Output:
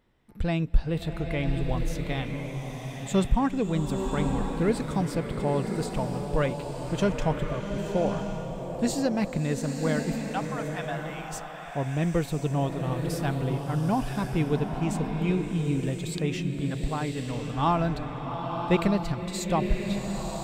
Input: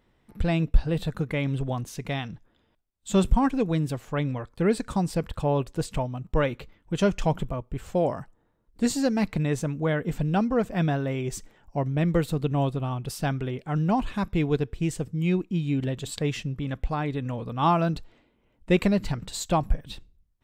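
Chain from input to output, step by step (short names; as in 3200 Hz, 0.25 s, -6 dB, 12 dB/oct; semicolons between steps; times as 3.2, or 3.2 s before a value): 10.14–11.33 steep high-pass 670 Hz 36 dB/oct; bloom reverb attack 1.06 s, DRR 3 dB; gain -2.5 dB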